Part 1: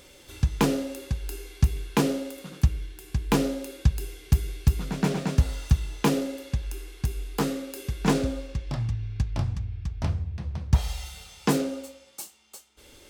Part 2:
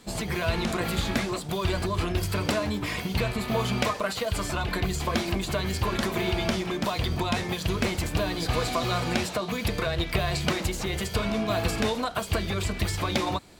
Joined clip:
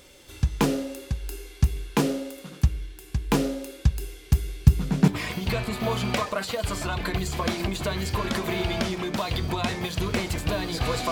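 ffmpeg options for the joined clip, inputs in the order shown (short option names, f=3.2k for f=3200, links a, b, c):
-filter_complex "[0:a]asettb=1/sr,asplit=3[a][b][c];[a]atrim=end=4.614[d];[b]atrim=start=4.61:end=5.08,asetpts=PTS-STARTPTS,afade=t=in:d=0.004:c=qsin,afade=t=out:st=0.466:d=0.004:c=qsin,equalizer=f=140:w=0.71:g=8[e];[c]atrim=start=5.076[f];[d][e]acrossfade=d=0.004:c1=hsin:c2=qsin[g];[g][f]acrossfade=d=0.004:c1=qsin:c2=hsin,apad=whole_dur=11.11,atrim=end=11.11,atrim=end=5.082[h];[1:a]atrim=start=2.758:end=8.79[i];[h][i]acrossfade=d=0.004:c1=hsin:c2=hsin"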